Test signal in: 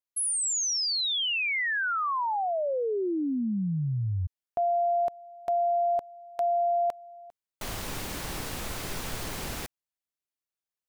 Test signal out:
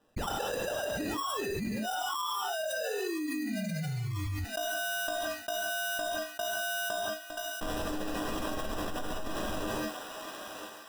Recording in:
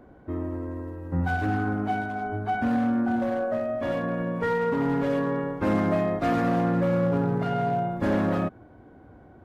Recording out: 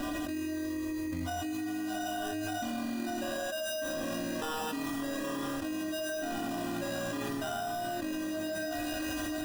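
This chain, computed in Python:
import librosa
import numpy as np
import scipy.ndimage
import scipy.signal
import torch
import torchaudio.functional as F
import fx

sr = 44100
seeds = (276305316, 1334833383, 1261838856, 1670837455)

p1 = fx.dereverb_blind(x, sr, rt60_s=1.5)
p2 = fx.stiff_resonator(p1, sr, f0_hz=300.0, decay_s=0.25, stiffness=0.03)
p3 = fx.sample_hold(p2, sr, seeds[0], rate_hz=2200.0, jitter_pct=0)
p4 = p3 + fx.echo_thinned(p3, sr, ms=980, feedback_pct=43, hz=700.0, wet_db=-24.0, dry=0)
p5 = fx.rev_gated(p4, sr, seeds[1], gate_ms=210, shape='flat', drr_db=-0.5)
p6 = fx.env_flatten(p5, sr, amount_pct=100)
y = p6 * librosa.db_to_amplitude(-4.0)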